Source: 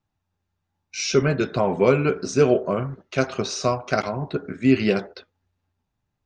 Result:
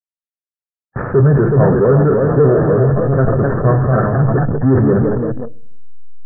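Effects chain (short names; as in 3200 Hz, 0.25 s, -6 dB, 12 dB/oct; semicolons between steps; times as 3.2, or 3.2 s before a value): level-crossing sampler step -24.5 dBFS; echoes that change speed 0.436 s, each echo +1 st, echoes 3, each echo -6 dB; spectral gate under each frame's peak -25 dB strong; reverb RT60 0.75 s, pre-delay 4 ms, DRR 13 dB; power-law curve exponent 0.5; rippled Chebyshev low-pass 1800 Hz, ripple 6 dB; bell 120 Hz +13 dB 1 oct; sustainer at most 29 dB/s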